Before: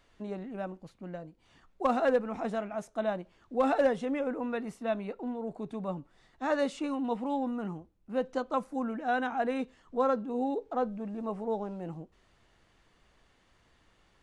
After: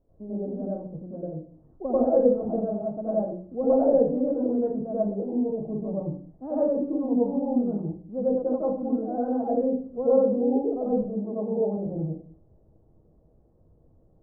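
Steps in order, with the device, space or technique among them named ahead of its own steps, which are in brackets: 10.93–11.77 steep high-pass 170 Hz 96 dB/oct; next room (LPF 590 Hz 24 dB/oct; reverb RT60 0.45 s, pre-delay 86 ms, DRR -7.5 dB)

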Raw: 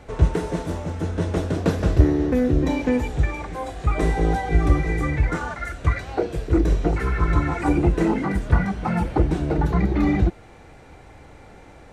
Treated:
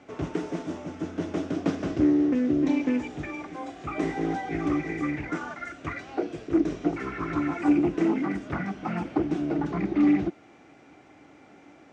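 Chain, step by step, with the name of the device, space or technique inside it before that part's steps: full-range speaker at full volume (Doppler distortion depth 0.55 ms; speaker cabinet 220–6700 Hz, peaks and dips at 290 Hz +7 dB, 490 Hz -8 dB, 930 Hz -6 dB, 1700 Hz -4 dB, 4100 Hz -7 dB); gain -3.5 dB

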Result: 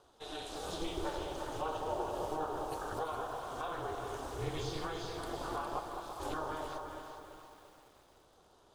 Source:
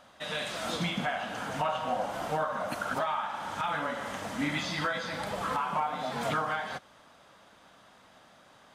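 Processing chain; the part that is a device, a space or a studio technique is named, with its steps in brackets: 5.79–6.2 differentiator; alien voice (ring modulator 160 Hz; flange 0.97 Hz, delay 1.8 ms, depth 6.1 ms, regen -64%); bell 2000 Hz -14.5 dB 1 oct; echo with dull and thin repeats by turns 0.205 s, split 860 Hz, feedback 56%, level -3.5 dB; lo-fi delay 0.34 s, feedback 55%, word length 10-bit, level -8.5 dB; gain +1.5 dB

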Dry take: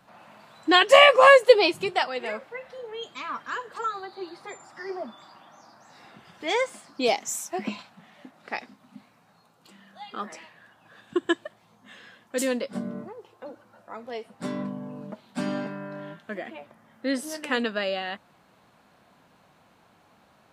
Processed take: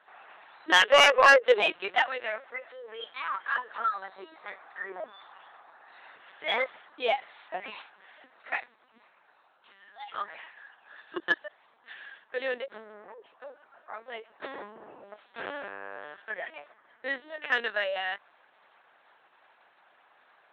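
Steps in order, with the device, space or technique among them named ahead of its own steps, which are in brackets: talking toy (LPC vocoder at 8 kHz pitch kept; HPF 620 Hz 12 dB/oct; bell 1700 Hz +6 dB 0.4 oct; soft clip -9.5 dBFS, distortion -12 dB)

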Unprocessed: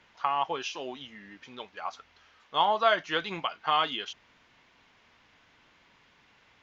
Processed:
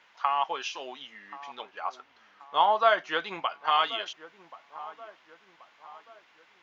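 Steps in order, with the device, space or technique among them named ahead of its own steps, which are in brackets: filter by subtraction (in parallel: LPF 1000 Hz 12 dB/oct + phase invert); 1.61–3.65 on the sum: tilt shelf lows +4 dB, about 1300 Hz; dark delay 1.081 s, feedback 43%, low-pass 1400 Hz, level -16 dB

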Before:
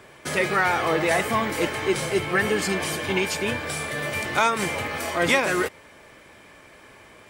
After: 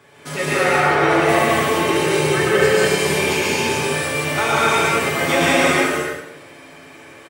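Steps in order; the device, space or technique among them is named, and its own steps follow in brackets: HPF 81 Hz; comb 7.1 ms, depth 45%; bathroom (reverb RT60 0.85 s, pre-delay 0.117 s, DRR -3 dB); 0.63–1.29 high shelf 6600 Hz -11 dB; non-linear reverb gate 0.35 s flat, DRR -5 dB; gain -4.5 dB

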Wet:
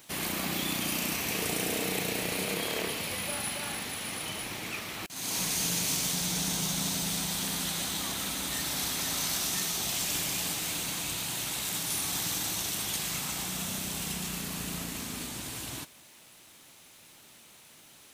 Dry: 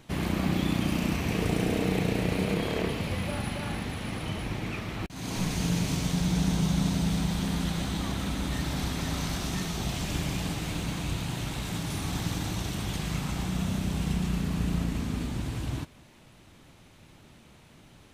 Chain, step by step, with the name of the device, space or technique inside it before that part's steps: turntable without a phono preamp (RIAA curve recording; white noise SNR 35 dB); gain -1.5 dB

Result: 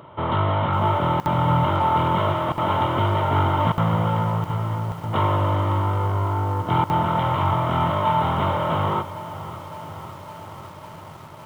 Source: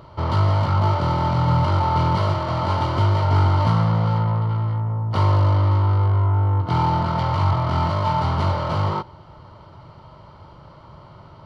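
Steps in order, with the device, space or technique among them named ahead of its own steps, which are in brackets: call with lost packets (HPF 150 Hz 12 dB/oct; downsampling 8000 Hz; packet loss packets of 60 ms random); lo-fi delay 0.556 s, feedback 80%, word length 7-bit, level -15 dB; gain +2 dB

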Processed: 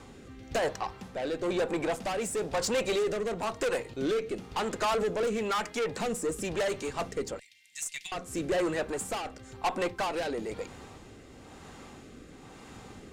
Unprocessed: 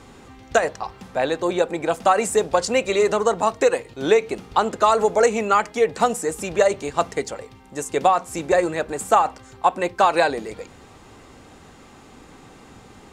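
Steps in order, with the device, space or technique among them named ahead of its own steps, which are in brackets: 7.39–8.12 elliptic high-pass 2000 Hz, stop band 40 dB; overdriven rotary cabinet (tube stage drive 24 dB, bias 0.25; rotary speaker horn 1 Hz)

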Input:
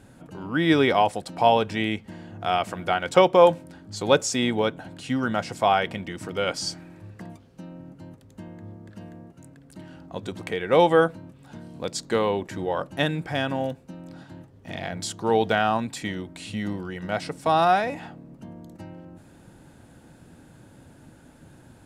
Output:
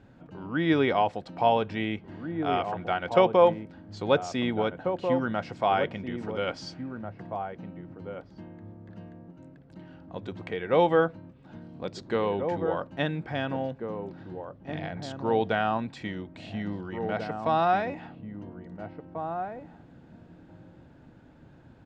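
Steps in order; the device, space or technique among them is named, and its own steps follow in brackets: shout across a valley (air absorption 190 m; outdoor echo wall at 290 m, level -7 dB); gain -3.5 dB

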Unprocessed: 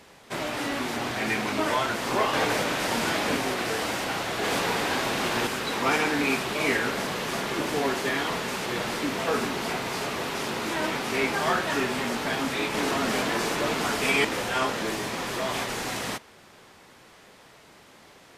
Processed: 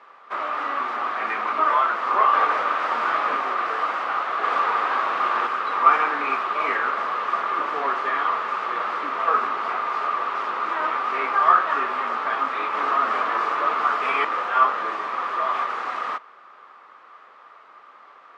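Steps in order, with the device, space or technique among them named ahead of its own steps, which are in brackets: tin-can telephone (BPF 540–2200 Hz; small resonant body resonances 1200 Hz, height 18 dB, ringing for 20 ms)

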